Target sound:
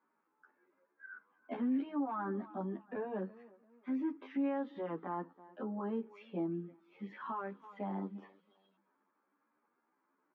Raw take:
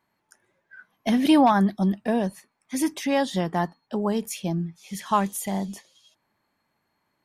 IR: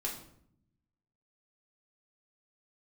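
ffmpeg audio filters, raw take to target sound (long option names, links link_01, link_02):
-filter_complex "[0:a]highpass=frequency=240:width=0.5412,highpass=frequency=240:width=1.3066,equalizer=frequency=280:width_type=q:width=4:gain=4,equalizer=frequency=470:width_type=q:width=4:gain=3,equalizer=frequency=670:width_type=q:width=4:gain=-8,equalizer=frequency=1300:width_type=q:width=4:gain=6,equalizer=frequency=1900:width_type=q:width=4:gain=-7,lowpass=frequency=2000:width=0.5412,lowpass=frequency=2000:width=1.3066,acompressor=threshold=-37dB:ratio=1.5,asplit=2[link_01][link_02];[link_02]aecho=0:1:232|464:0.0631|0.0221[link_03];[link_01][link_03]amix=inputs=2:normalize=0,alimiter=level_in=2dB:limit=-24dB:level=0:latency=1:release=26,volume=-2dB,atempo=0.7,asplit=2[link_04][link_05];[link_05]adelay=10.4,afreqshift=0.84[link_06];[link_04][link_06]amix=inputs=2:normalize=1,volume=-1dB"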